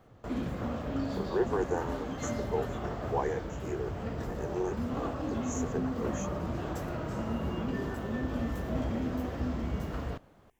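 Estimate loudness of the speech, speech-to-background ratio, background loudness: −37.0 LKFS, −1.5 dB, −35.5 LKFS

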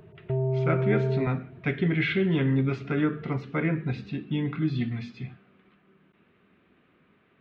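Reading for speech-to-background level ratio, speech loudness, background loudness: 0.0 dB, −28.0 LKFS, −28.0 LKFS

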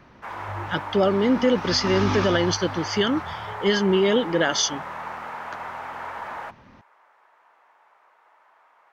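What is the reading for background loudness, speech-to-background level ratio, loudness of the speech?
−34.0 LKFS, 12.0 dB, −22.0 LKFS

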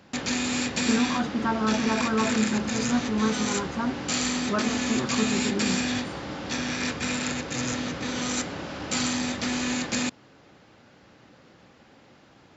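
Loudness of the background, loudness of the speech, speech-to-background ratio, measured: −28.0 LKFS, −28.5 LKFS, −0.5 dB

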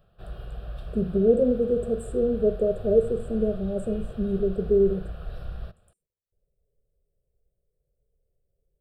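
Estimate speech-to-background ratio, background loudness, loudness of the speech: 15.0 dB, −40.0 LKFS, −25.0 LKFS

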